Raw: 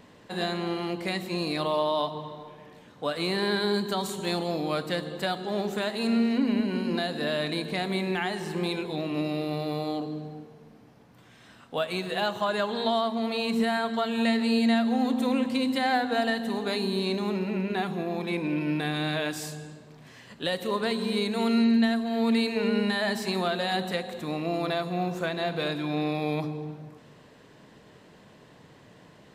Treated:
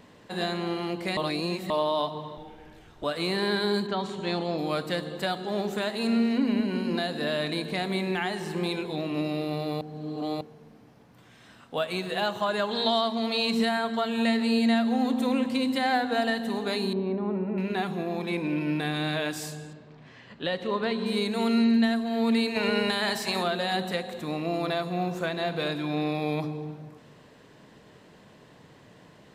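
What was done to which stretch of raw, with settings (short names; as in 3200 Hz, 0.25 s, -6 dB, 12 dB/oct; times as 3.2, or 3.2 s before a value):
1.17–1.7 reverse
2.37–3.04 frequency shift -140 Hz
3.86–4.57 LPF 3100 Hz -> 5300 Hz
9.81–10.41 reverse
12.71–13.69 bell 4500 Hz +7 dB 1.3 oct
16.93–17.58 LPF 1100 Hz
19.73–21.06 LPF 3800 Hz
22.54–23.42 spectral limiter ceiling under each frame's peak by 12 dB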